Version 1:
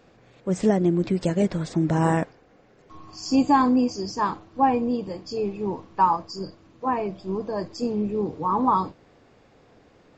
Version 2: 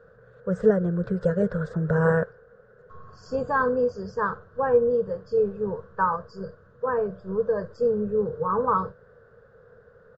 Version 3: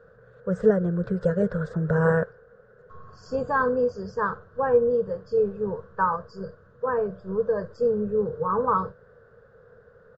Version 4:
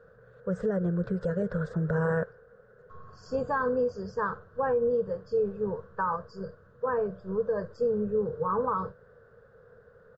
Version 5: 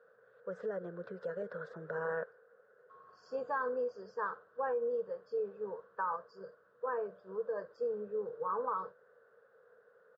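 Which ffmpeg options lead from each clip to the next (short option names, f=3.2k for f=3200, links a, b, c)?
-af "firequalizer=gain_entry='entry(130,0);entry(210,-5);entry(300,-25);entry(460,9);entry(760,-13);entry(1500,9);entry(2200,-23);entry(3600,-17);entry(6000,-21)':delay=0.05:min_phase=1,volume=1.5dB"
-af anull
-af "alimiter=limit=-17dB:level=0:latency=1:release=86,volume=-2.5dB"
-af "highpass=430,lowpass=4.4k,volume=-6dB"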